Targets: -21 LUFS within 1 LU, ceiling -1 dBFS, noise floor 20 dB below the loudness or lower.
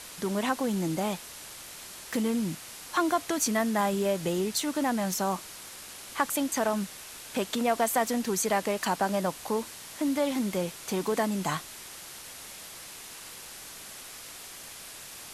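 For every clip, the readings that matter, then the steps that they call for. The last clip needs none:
noise floor -45 dBFS; noise floor target -49 dBFS; loudness -29.0 LUFS; peak level -12.5 dBFS; loudness target -21.0 LUFS
-> noise reduction 6 dB, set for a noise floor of -45 dBFS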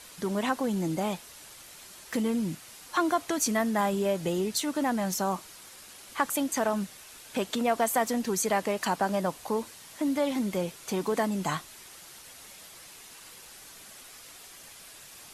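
noise floor -49 dBFS; noise floor target -50 dBFS
-> noise reduction 6 dB, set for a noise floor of -49 dBFS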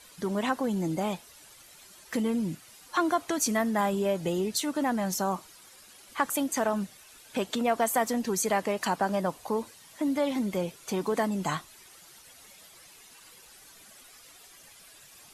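noise floor -54 dBFS; loudness -29.5 LUFS; peak level -12.5 dBFS; loudness target -21.0 LUFS
-> trim +8.5 dB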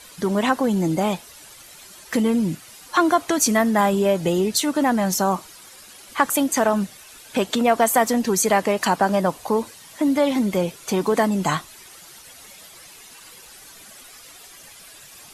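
loudness -21.0 LUFS; peak level -4.0 dBFS; noise floor -45 dBFS

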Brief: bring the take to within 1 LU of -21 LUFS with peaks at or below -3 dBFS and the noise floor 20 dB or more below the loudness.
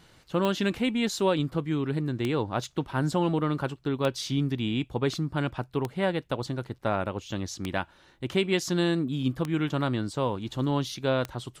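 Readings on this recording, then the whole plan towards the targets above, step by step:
clicks found 7; loudness -28.5 LUFS; peak level -12.5 dBFS; loudness target -21.0 LUFS
-> de-click; trim +7.5 dB

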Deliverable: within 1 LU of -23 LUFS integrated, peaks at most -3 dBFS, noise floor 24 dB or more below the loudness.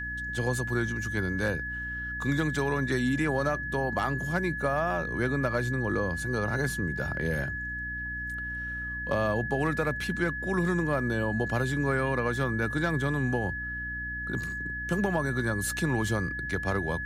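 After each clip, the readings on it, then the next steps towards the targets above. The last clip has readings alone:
hum 60 Hz; highest harmonic 300 Hz; hum level -38 dBFS; steady tone 1.7 kHz; tone level -33 dBFS; loudness -29.0 LUFS; peak level -14.5 dBFS; loudness target -23.0 LUFS
-> de-hum 60 Hz, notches 5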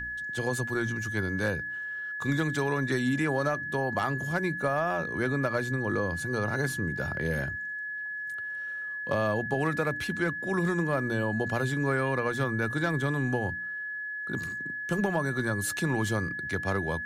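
hum not found; steady tone 1.7 kHz; tone level -33 dBFS
-> band-stop 1.7 kHz, Q 30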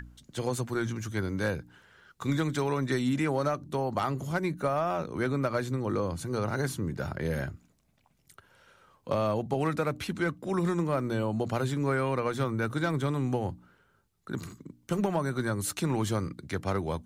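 steady tone not found; loudness -30.5 LUFS; peak level -16.0 dBFS; loudness target -23.0 LUFS
-> trim +7.5 dB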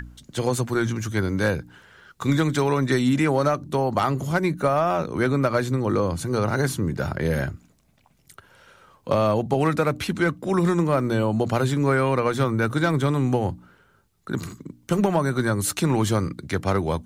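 loudness -23.5 LUFS; peak level -8.5 dBFS; noise floor -62 dBFS

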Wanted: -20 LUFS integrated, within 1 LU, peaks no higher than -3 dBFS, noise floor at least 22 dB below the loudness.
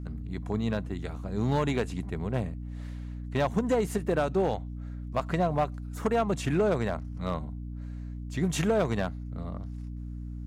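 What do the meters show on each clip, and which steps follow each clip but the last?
clipped samples 0.7%; clipping level -19.0 dBFS; hum 60 Hz; highest harmonic 300 Hz; hum level -35 dBFS; loudness -30.5 LUFS; peak level -19.0 dBFS; loudness target -20.0 LUFS
-> clip repair -19 dBFS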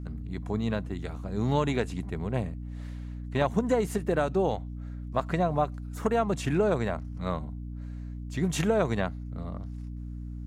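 clipped samples 0.0%; hum 60 Hz; highest harmonic 300 Hz; hum level -35 dBFS
-> de-hum 60 Hz, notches 5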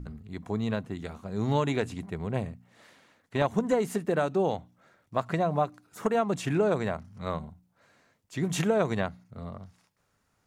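hum not found; loudness -29.5 LUFS; peak level -11.5 dBFS; loudness target -20.0 LUFS
-> trim +9.5 dB; peak limiter -3 dBFS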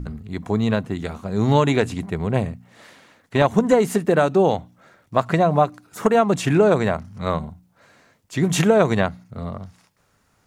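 loudness -20.5 LUFS; peak level -3.0 dBFS; noise floor -63 dBFS

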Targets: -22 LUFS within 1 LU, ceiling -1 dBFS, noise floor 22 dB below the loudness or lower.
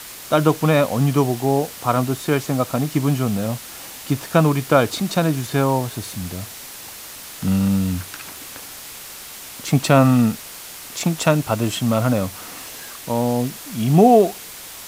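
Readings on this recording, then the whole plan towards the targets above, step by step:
noise floor -37 dBFS; noise floor target -42 dBFS; loudness -19.5 LUFS; peak level -2.0 dBFS; loudness target -22.0 LUFS
-> noise reduction 6 dB, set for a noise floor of -37 dBFS; trim -2.5 dB

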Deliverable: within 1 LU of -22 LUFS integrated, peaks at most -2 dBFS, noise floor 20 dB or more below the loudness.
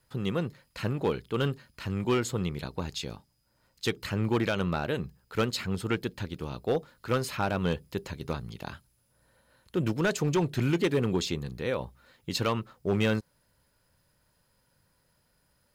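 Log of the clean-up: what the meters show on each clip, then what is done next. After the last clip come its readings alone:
clipped samples 0.8%; clipping level -19.5 dBFS; loudness -31.0 LUFS; peak level -19.5 dBFS; loudness target -22.0 LUFS
-> clip repair -19.5 dBFS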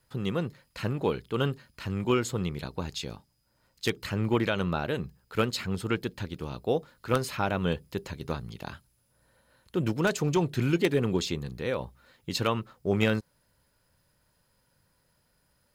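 clipped samples 0.0%; loudness -30.0 LUFS; peak level -10.5 dBFS; loudness target -22.0 LUFS
-> trim +8 dB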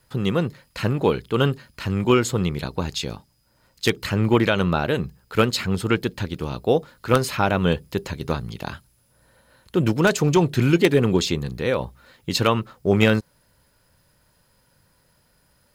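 loudness -22.0 LUFS; peak level -2.5 dBFS; noise floor -63 dBFS

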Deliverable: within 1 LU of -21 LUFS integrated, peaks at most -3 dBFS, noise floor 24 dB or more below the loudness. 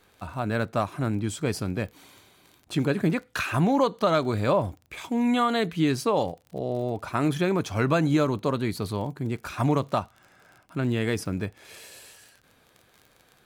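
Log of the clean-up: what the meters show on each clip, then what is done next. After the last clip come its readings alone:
tick rate 35 per s; loudness -26.5 LUFS; peak level -11.0 dBFS; loudness target -21.0 LUFS
-> de-click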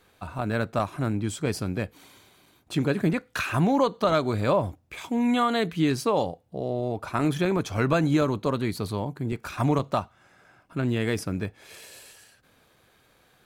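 tick rate 0.37 per s; loudness -26.5 LUFS; peak level -11.5 dBFS; loudness target -21.0 LUFS
-> trim +5.5 dB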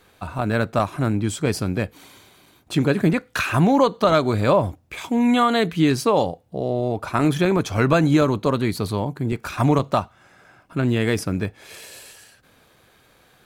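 loudness -21.0 LUFS; peak level -6.0 dBFS; noise floor -57 dBFS

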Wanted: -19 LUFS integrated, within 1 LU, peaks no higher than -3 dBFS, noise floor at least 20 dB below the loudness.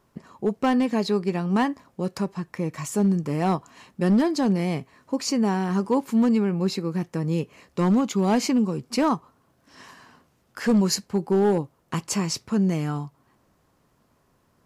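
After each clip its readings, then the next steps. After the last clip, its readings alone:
clipped samples 0.8%; clipping level -14.5 dBFS; loudness -24.5 LUFS; peak level -14.5 dBFS; loudness target -19.0 LUFS
-> clip repair -14.5 dBFS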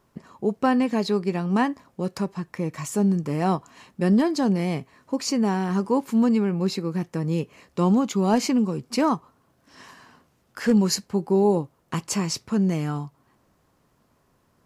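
clipped samples 0.0%; loudness -24.0 LUFS; peak level -9.0 dBFS; loudness target -19.0 LUFS
-> trim +5 dB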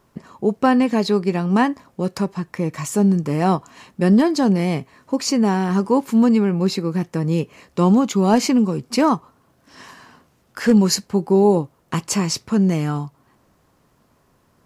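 loudness -19.0 LUFS; peak level -4.0 dBFS; noise floor -61 dBFS

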